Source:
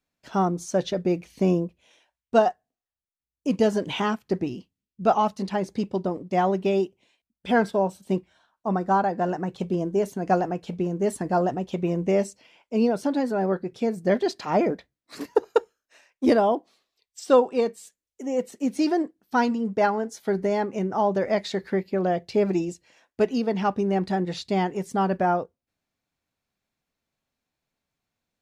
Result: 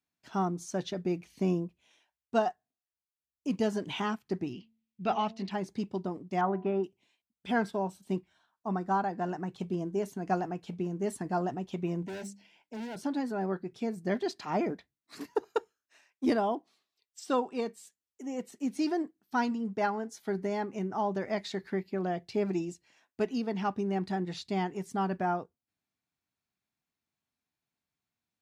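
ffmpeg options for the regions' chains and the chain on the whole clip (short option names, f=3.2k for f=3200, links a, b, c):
-filter_complex "[0:a]asettb=1/sr,asplit=3[a][b][c];[a]atrim=end=4.534[d];[b]atrim=start=4.53:end=5.51,asetpts=PTS-STARTPTS,afade=t=in:d=0.004:c=qsin,afade=t=out:st=0.976:d=0.004:c=qsin,lowpass=3.6k,highshelf=f=1.7k:t=q:w=1.5:g=6.5,bandreject=f=223.9:t=h:w=4,bandreject=f=447.8:t=h:w=4,bandreject=f=671.7:t=h:w=4,bandreject=f=895.6:t=h:w=4[e];[c]atrim=start=5.506[f];[d][e]acrossfade=d=0.004:c1=hsin:c2=qsin[g];[g][f]acrossfade=d=0.004:c1=qsin:c2=hsin,asettb=1/sr,asplit=3[h][i][j];[h]atrim=end=6.414[k];[i]atrim=start=6.41:end=6.84,asetpts=PTS-STARTPTS,afade=t=in:d=0.004:c=qsin,afade=t=out:st=0.426:d=0.004:c=qsin,lowpass=f=1.4k:t=q:w=1.9,bandreject=f=123.9:t=h:w=4,bandreject=f=247.8:t=h:w=4,bandreject=f=371.7:t=h:w=4,bandreject=f=495.6:t=h:w=4,bandreject=f=619.5:t=h:w=4,bandreject=f=743.4:t=h:w=4,bandreject=f=867.3:t=h:w=4,bandreject=f=991.2:t=h:w=4[l];[j]atrim=start=6.836[m];[k][l]acrossfade=d=0.004:c1=hsin:c2=qsin[n];[n][m]acrossfade=d=0.004:c1=qsin:c2=hsin,asettb=1/sr,asplit=3[o][p][q];[o]atrim=end=12.024[r];[p]atrim=start=12.02:end=12.99,asetpts=PTS-STARTPTS,afade=t=in:d=0.004:c=qsin,afade=t=out:st=0.966:d=0.004:c=qsin,bandreject=f=50:t=h:w=6,bandreject=f=100:t=h:w=6,bandreject=f=150:t=h:w=6,bandreject=f=200:t=h:w=6,bandreject=f=250:t=h:w=6,bandreject=f=300:t=h:w=6,volume=29dB,asoftclip=hard,volume=-29dB,asuperstop=centerf=1200:order=4:qfactor=3.1[s];[q]atrim=start=12.986[t];[r][s]acrossfade=d=0.004:c1=hsin:c2=qsin[u];[u][t]acrossfade=d=0.004:c1=qsin:c2=hsin,highpass=69,equalizer=f=530:t=o:w=0.4:g=-8.5,volume=-6.5dB"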